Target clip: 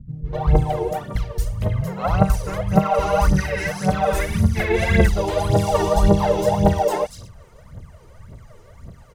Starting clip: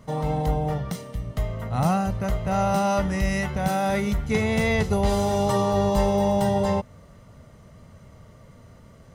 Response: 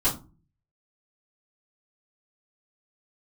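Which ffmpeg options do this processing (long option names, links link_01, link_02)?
-filter_complex "[0:a]acrossover=split=240|4600[link_01][link_02][link_03];[link_02]adelay=250[link_04];[link_03]adelay=470[link_05];[link_01][link_04][link_05]amix=inputs=3:normalize=0,aphaser=in_gain=1:out_gain=1:delay=2.4:decay=0.79:speed=1.8:type=triangular,asplit=2[link_06][link_07];[link_07]asetrate=35002,aresample=44100,atempo=1.25992,volume=-5dB[link_08];[link_06][link_08]amix=inputs=2:normalize=0,volume=-1dB"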